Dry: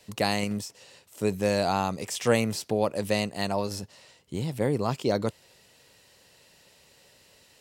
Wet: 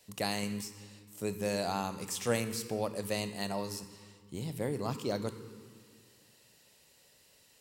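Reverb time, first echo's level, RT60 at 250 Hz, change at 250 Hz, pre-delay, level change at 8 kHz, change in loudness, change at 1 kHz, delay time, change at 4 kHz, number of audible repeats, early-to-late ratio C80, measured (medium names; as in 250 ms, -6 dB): 1.9 s, no echo, 2.2 s, -7.5 dB, 21 ms, -3.0 dB, -7.5 dB, -8.0 dB, no echo, -6.0 dB, no echo, 12.0 dB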